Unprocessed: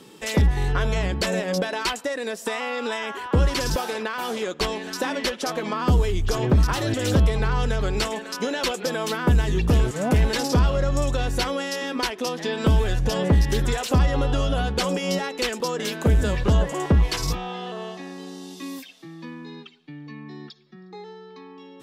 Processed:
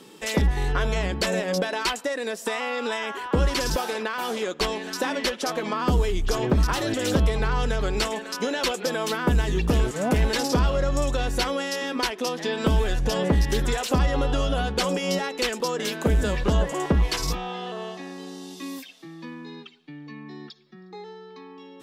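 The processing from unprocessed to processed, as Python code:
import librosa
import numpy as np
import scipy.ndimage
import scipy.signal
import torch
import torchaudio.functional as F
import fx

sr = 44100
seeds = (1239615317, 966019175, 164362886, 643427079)

y = fx.peak_eq(x, sr, hz=100.0, db=-10.0, octaves=0.82)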